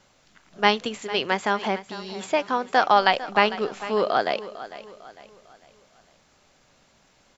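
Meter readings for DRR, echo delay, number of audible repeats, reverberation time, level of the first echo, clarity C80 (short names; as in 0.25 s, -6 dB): none, 0.451 s, 3, none, -15.0 dB, none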